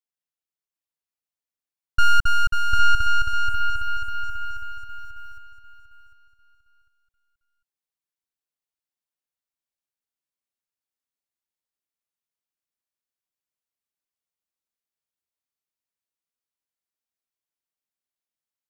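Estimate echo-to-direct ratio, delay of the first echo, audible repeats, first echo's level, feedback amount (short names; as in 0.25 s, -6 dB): -2.5 dB, 0.749 s, 3, -3.0 dB, 27%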